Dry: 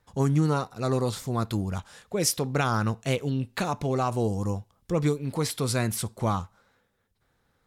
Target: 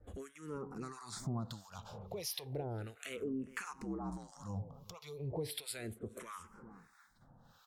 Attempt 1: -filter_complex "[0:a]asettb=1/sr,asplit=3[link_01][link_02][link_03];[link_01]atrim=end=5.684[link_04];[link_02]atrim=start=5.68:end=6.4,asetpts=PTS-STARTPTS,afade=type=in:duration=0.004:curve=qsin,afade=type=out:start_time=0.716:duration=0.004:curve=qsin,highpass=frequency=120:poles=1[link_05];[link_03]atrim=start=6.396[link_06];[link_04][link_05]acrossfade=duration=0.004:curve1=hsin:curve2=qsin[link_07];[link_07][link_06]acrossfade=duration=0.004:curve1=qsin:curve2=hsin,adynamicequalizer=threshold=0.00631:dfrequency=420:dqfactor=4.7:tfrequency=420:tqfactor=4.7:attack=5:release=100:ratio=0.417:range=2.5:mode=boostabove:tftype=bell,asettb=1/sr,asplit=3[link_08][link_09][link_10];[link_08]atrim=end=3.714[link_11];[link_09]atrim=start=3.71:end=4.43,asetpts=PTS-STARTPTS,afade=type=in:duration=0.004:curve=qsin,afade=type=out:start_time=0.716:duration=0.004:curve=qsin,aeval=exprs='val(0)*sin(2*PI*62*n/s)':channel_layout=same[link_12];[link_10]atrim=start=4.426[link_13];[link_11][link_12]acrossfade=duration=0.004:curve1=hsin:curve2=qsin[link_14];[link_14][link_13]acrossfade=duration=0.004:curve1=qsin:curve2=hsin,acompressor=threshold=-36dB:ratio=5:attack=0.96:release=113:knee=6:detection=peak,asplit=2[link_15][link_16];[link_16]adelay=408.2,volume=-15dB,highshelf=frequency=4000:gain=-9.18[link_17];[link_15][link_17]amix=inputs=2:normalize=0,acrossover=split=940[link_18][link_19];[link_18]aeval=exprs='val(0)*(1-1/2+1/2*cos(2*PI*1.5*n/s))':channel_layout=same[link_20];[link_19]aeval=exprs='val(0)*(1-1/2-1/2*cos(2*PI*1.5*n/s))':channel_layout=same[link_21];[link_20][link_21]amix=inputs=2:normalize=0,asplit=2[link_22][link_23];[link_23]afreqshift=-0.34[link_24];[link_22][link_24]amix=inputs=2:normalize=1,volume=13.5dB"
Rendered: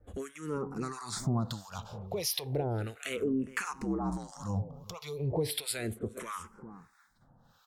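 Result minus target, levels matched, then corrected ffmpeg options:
downward compressor: peak gain reduction −8.5 dB
-filter_complex "[0:a]asettb=1/sr,asplit=3[link_01][link_02][link_03];[link_01]atrim=end=5.684[link_04];[link_02]atrim=start=5.68:end=6.4,asetpts=PTS-STARTPTS,afade=type=in:duration=0.004:curve=qsin,afade=type=out:start_time=0.716:duration=0.004:curve=qsin,highpass=frequency=120:poles=1[link_05];[link_03]atrim=start=6.396[link_06];[link_04][link_05]acrossfade=duration=0.004:curve1=hsin:curve2=qsin[link_07];[link_07][link_06]acrossfade=duration=0.004:curve1=qsin:curve2=hsin,adynamicequalizer=threshold=0.00631:dfrequency=420:dqfactor=4.7:tfrequency=420:tqfactor=4.7:attack=5:release=100:ratio=0.417:range=2.5:mode=boostabove:tftype=bell,asettb=1/sr,asplit=3[link_08][link_09][link_10];[link_08]atrim=end=3.714[link_11];[link_09]atrim=start=3.71:end=4.43,asetpts=PTS-STARTPTS,afade=type=in:duration=0.004:curve=qsin,afade=type=out:start_time=0.716:duration=0.004:curve=qsin,aeval=exprs='val(0)*sin(2*PI*62*n/s)':channel_layout=same[link_12];[link_10]atrim=start=4.426[link_13];[link_11][link_12]acrossfade=duration=0.004:curve1=hsin:curve2=qsin[link_14];[link_14][link_13]acrossfade=duration=0.004:curve1=qsin:curve2=hsin,acompressor=threshold=-46.5dB:ratio=5:attack=0.96:release=113:knee=6:detection=peak,asplit=2[link_15][link_16];[link_16]adelay=408.2,volume=-15dB,highshelf=frequency=4000:gain=-9.18[link_17];[link_15][link_17]amix=inputs=2:normalize=0,acrossover=split=940[link_18][link_19];[link_18]aeval=exprs='val(0)*(1-1/2+1/2*cos(2*PI*1.5*n/s))':channel_layout=same[link_20];[link_19]aeval=exprs='val(0)*(1-1/2-1/2*cos(2*PI*1.5*n/s))':channel_layout=same[link_21];[link_20][link_21]amix=inputs=2:normalize=0,asplit=2[link_22][link_23];[link_23]afreqshift=-0.34[link_24];[link_22][link_24]amix=inputs=2:normalize=1,volume=13.5dB"

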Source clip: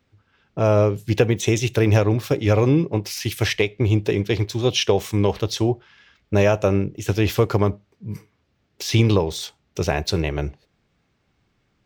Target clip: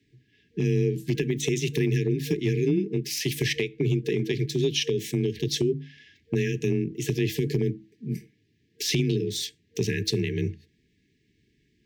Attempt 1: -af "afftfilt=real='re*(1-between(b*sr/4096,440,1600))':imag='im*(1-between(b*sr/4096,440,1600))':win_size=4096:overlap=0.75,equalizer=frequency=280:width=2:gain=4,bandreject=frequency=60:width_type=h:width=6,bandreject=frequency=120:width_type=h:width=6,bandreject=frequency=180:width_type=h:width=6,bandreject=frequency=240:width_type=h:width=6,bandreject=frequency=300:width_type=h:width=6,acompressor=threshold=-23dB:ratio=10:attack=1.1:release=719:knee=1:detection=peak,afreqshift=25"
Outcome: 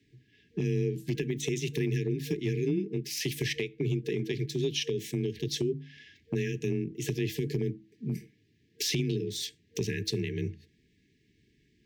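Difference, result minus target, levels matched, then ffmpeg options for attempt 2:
downward compressor: peak gain reduction +5.5 dB
-af "afftfilt=real='re*(1-between(b*sr/4096,440,1600))':imag='im*(1-between(b*sr/4096,440,1600))':win_size=4096:overlap=0.75,equalizer=frequency=280:width=2:gain=4,bandreject=frequency=60:width_type=h:width=6,bandreject=frequency=120:width_type=h:width=6,bandreject=frequency=180:width_type=h:width=6,bandreject=frequency=240:width_type=h:width=6,bandreject=frequency=300:width_type=h:width=6,acompressor=threshold=-17dB:ratio=10:attack=1.1:release=719:knee=1:detection=peak,afreqshift=25"

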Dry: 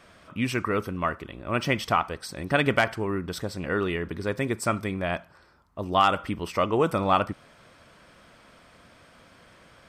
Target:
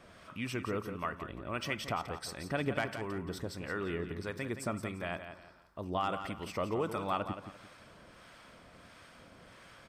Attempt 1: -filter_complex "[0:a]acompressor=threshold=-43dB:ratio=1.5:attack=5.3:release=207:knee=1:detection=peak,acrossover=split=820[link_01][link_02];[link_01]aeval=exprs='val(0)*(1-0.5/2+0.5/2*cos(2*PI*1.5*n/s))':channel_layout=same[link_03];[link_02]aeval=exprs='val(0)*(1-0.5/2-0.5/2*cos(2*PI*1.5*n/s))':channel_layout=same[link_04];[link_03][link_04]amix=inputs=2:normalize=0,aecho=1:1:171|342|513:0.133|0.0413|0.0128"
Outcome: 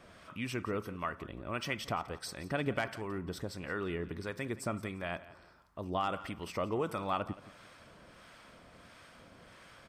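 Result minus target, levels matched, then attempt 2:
echo-to-direct −8 dB
-filter_complex "[0:a]acompressor=threshold=-43dB:ratio=1.5:attack=5.3:release=207:knee=1:detection=peak,acrossover=split=820[link_01][link_02];[link_01]aeval=exprs='val(0)*(1-0.5/2+0.5/2*cos(2*PI*1.5*n/s))':channel_layout=same[link_03];[link_02]aeval=exprs='val(0)*(1-0.5/2-0.5/2*cos(2*PI*1.5*n/s))':channel_layout=same[link_04];[link_03][link_04]amix=inputs=2:normalize=0,aecho=1:1:171|342|513:0.335|0.104|0.0322"

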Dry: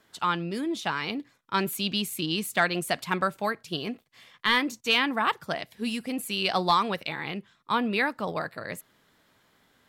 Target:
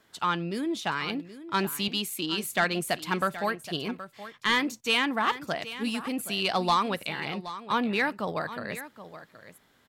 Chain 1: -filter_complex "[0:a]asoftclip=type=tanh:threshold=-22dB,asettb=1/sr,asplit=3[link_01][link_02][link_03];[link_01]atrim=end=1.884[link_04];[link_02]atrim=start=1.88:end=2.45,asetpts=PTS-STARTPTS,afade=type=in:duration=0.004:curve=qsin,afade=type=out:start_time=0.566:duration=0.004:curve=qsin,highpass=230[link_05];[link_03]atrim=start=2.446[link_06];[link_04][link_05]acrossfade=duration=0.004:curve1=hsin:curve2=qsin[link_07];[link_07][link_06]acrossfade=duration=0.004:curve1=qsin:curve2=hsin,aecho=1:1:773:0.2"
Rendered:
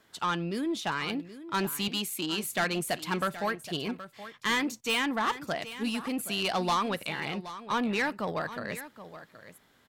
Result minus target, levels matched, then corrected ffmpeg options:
soft clipping: distortion +10 dB
-filter_complex "[0:a]asoftclip=type=tanh:threshold=-14dB,asettb=1/sr,asplit=3[link_01][link_02][link_03];[link_01]atrim=end=1.884[link_04];[link_02]atrim=start=1.88:end=2.45,asetpts=PTS-STARTPTS,afade=type=in:duration=0.004:curve=qsin,afade=type=out:start_time=0.566:duration=0.004:curve=qsin,highpass=230[link_05];[link_03]atrim=start=2.446[link_06];[link_04][link_05]acrossfade=duration=0.004:curve1=hsin:curve2=qsin[link_07];[link_07][link_06]acrossfade=duration=0.004:curve1=qsin:curve2=hsin,aecho=1:1:773:0.2"

